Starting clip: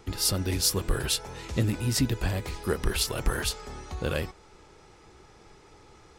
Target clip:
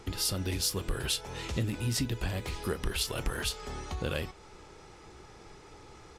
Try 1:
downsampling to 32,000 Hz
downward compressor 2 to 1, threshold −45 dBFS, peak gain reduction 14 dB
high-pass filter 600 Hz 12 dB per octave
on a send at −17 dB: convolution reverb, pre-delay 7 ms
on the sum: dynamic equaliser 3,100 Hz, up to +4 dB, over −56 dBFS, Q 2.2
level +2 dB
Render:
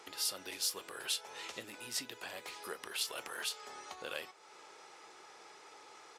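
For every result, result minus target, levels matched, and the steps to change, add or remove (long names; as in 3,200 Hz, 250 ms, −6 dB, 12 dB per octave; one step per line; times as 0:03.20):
downward compressor: peak gain reduction +4 dB; 500 Hz band −3.5 dB
change: downward compressor 2 to 1, threshold −36.5 dBFS, peak gain reduction 10 dB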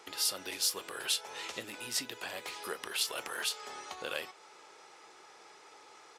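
500 Hz band −3.5 dB
remove: high-pass filter 600 Hz 12 dB per octave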